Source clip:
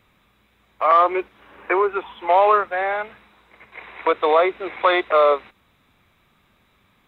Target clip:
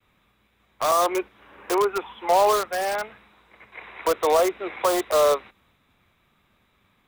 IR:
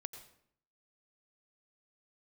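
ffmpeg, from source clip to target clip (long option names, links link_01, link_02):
-filter_complex "[0:a]agate=range=-33dB:threshold=-58dB:ratio=3:detection=peak,acrossover=split=230|1200[link_01][link_02][link_03];[link_03]aeval=exprs='(mod(15.8*val(0)+1,2)-1)/15.8':channel_layout=same[link_04];[link_01][link_02][link_04]amix=inputs=3:normalize=0,volume=-2dB"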